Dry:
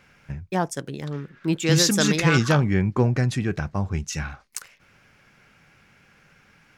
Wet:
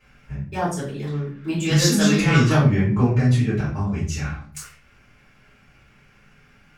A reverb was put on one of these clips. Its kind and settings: simulated room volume 44 m³, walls mixed, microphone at 3.1 m; trim -13 dB

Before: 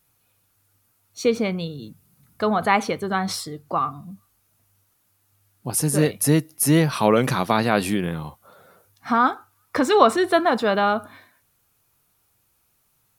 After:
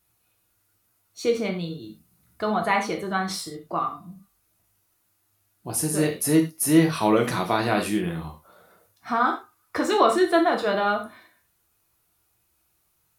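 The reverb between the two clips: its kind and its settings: gated-style reverb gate 130 ms falling, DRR 1.5 dB; trim -5 dB

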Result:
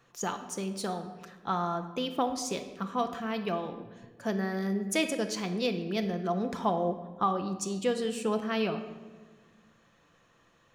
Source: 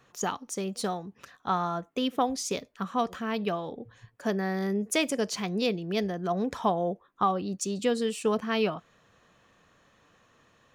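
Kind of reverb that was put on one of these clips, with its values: simulated room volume 1100 m³, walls mixed, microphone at 0.76 m; trim -3 dB

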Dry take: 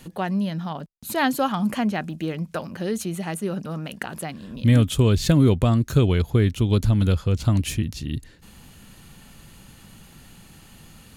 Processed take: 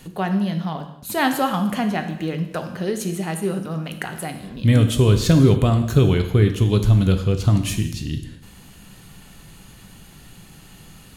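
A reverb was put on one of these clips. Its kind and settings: gated-style reverb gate 300 ms falling, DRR 5.5 dB; trim +1.5 dB

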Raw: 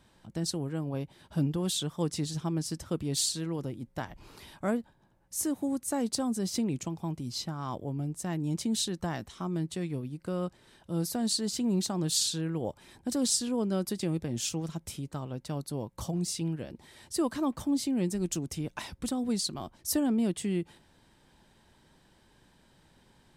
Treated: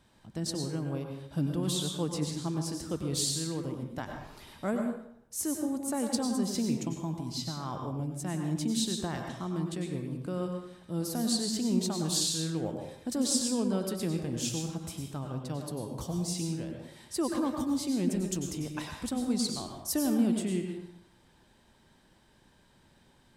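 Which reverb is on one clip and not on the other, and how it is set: plate-style reverb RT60 0.73 s, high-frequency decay 0.7×, pre-delay 85 ms, DRR 3 dB; trim -2 dB

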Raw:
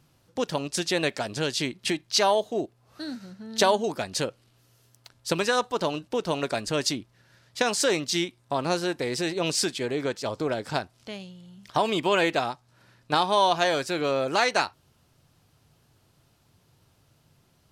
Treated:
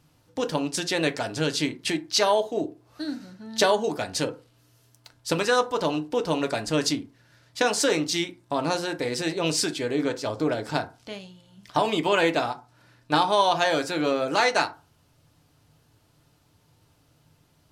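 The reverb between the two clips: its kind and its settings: FDN reverb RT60 0.32 s, low-frequency decay 1×, high-frequency decay 0.5×, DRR 6 dB

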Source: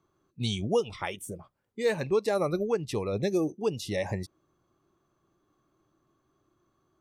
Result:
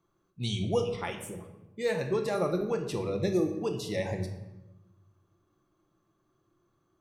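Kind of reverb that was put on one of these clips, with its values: simulated room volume 420 m³, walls mixed, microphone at 0.8 m; trim -3 dB

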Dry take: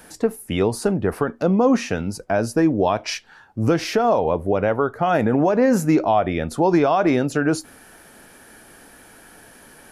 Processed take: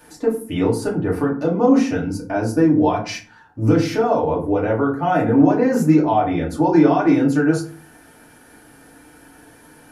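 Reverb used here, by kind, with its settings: FDN reverb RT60 0.42 s, low-frequency decay 1.6×, high-frequency decay 0.55×, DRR -4.5 dB; trim -7 dB

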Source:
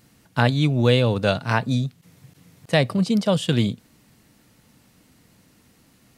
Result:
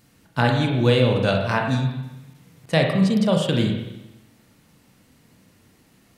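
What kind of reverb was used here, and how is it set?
spring tank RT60 1 s, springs 31/37/42 ms, chirp 35 ms, DRR 1.5 dB; trim -1.5 dB

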